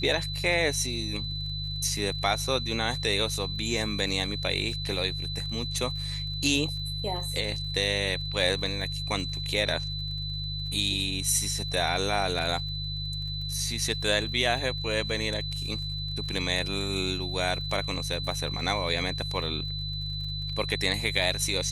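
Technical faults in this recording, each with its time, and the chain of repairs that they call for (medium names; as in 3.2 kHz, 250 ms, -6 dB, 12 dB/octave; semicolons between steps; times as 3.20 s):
crackle 42 per s -39 dBFS
hum 50 Hz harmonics 3 -35 dBFS
whine 4 kHz -34 dBFS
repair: de-click; de-hum 50 Hz, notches 3; band-stop 4 kHz, Q 30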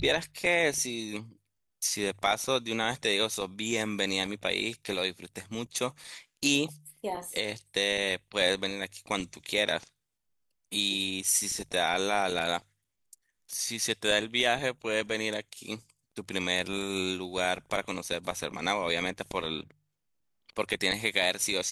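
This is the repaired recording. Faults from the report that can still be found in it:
nothing left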